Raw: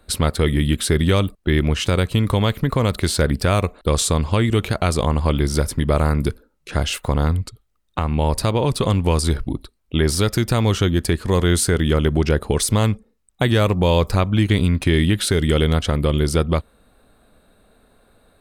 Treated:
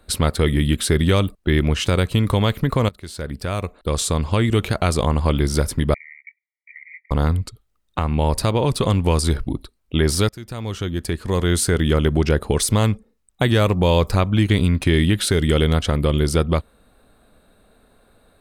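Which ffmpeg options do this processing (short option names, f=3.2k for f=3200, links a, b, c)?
-filter_complex "[0:a]asettb=1/sr,asplit=3[a][b][c];[a]atrim=end=5.944[d];[b]atrim=start=5.94:end=7.11,asetpts=PTS-STARTPTS,afade=t=in:d=0.004:c=qsin,afade=t=out:st=1.166:d=0.004:c=qsin,asuperpass=centerf=2100:order=20:qfactor=3.8[e];[c]atrim=start=7.106[f];[d][e]acrossfade=d=0.004:c1=hsin:c2=qsin[g];[g][f]acrossfade=d=0.004:c1=qsin:c2=hsin,asplit=3[h][i][j];[h]atrim=end=2.89,asetpts=PTS-STARTPTS,afade=t=out:st=2.886:d=0.004:c=hsin:silence=0.0841395[k];[i]atrim=start=2.89:end=10.29,asetpts=PTS-STARTPTS,afade=t=in:d=1.61:silence=0.0841395,afade=t=out:st=7.396:d=0.004:c=hsin:silence=0.0891251[l];[j]atrim=start=10.29,asetpts=PTS-STARTPTS,afade=t=in:d=1.52:silence=0.0891251[m];[k][l][m]concat=n=3:v=0:a=1"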